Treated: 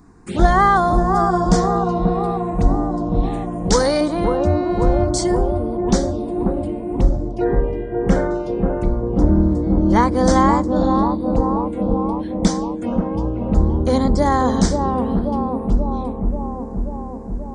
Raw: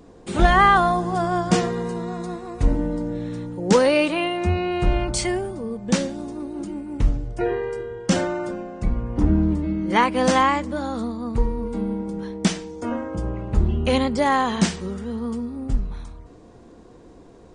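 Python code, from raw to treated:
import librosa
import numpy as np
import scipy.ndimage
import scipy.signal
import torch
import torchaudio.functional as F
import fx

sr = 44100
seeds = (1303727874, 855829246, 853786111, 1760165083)

p1 = fx.tilt_shelf(x, sr, db=-6.5, hz=940.0, at=(3.23, 4.01))
p2 = fx.brickwall_highpass(p1, sr, low_hz=350.0, at=(11.4, 11.81))
p3 = fx.env_phaser(p2, sr, low_hz=500.0, high_hz=2700.0, full_db=-20.0)
p4 = fx.high_shelf_res(p3, sr, hz=3200.0, db=-10.5, q=1.5, at=(7.44, 8.31))
p5 = p4 + fx.echo_bbd(p4, sr, ms=534, stages=4096, feedback_pct=72, wet_db=-4, dry=0)
y = F.gain(torch.from_numpy(p5), 3.0).numpy()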